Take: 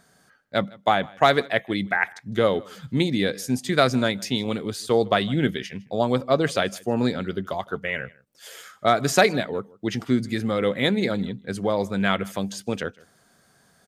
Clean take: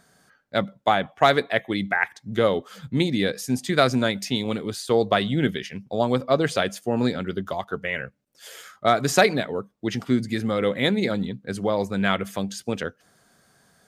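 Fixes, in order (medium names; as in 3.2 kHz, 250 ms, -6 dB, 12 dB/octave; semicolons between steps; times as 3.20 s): inverse comb 157 ms -24 dB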